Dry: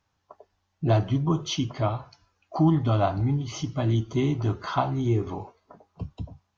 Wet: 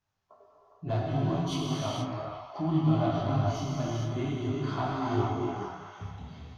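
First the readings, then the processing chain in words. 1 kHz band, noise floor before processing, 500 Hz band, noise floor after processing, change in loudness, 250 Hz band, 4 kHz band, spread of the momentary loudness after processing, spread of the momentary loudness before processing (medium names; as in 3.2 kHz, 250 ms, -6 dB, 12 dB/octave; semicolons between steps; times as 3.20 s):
-3.0 dB, -76 dBFS, -3.5 dB, -62 dBFS, -4.5 dB, -3.5 dB, -4.0 dB, 14 LU, 15 LU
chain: self-modulated delay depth 0.053 ms; repeats whose band climbs or falls 412 ms, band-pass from 920 Hz, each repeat 0.7 oct, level -4 dB; gated-style reverb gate 500 ms flat, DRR -4 dB; detune thickener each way 20 cents; trim -6 dB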